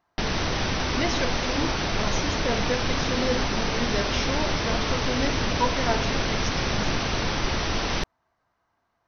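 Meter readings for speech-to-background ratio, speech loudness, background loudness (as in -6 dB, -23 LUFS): -5.0 dB, -31.0 LUFS, -26.0 LUFS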